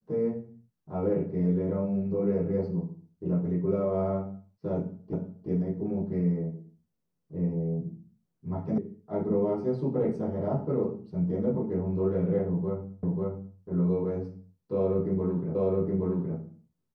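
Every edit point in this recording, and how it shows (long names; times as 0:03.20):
0:05.13: the same again, the last 0.36 s
0:08.78: cut off before it has died away
0:13.03: the same again, the last 0.54 s
0:15.55: the same again, the last 0.82 s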